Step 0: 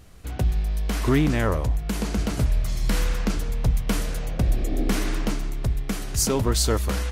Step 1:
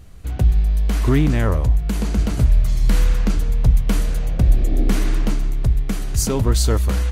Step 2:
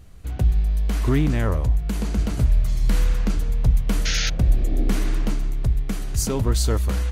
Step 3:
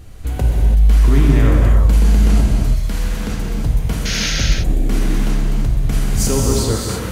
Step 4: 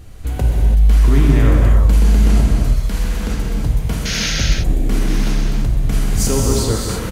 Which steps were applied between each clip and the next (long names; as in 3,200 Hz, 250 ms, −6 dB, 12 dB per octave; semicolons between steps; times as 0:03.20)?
low-shelf EQ 170 Hz +8.5 dB; notch filter 5,300 Hz, Q 23
sound drawn into the spectrogram noise, 0:04.05–0:04.30, 1,300–6,800 Hz −22 dBFS; level −3.5 dB
in parallel at −0.5 dB: compressor whose output falls as the input rises −26 dBFS, ratio −1; on the sum: reverb whose tail is shaped and stops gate 360 ms flat, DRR −2.5 dB; level −2 dB
single-tap delay 1,021 ms −14.5 dB